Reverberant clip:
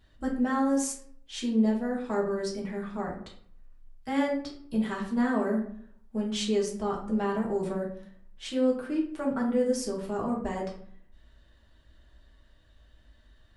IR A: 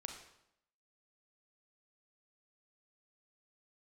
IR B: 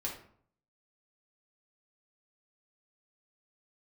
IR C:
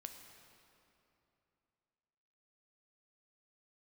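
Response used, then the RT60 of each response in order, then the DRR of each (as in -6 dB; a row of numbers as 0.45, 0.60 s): B; 0.80, 0.60, 2.9 s; 3.5, -3.0, 5.0 dB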